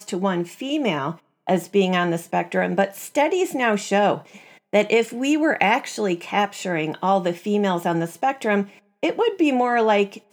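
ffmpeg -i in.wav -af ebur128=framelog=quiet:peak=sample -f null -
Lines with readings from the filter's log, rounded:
Integrated loudness:
  I:         -21.7 LUFS
  Threshold: -31.9 LUFS
Loudness range:
  LRA:         2.1 LU
  Threshold: -41.8 LUFS
  LRA low:   -23.0 LUFS
  LRA high:  -21.0 LUFS
Sample peak:
  Peak:       -1.8 dBFS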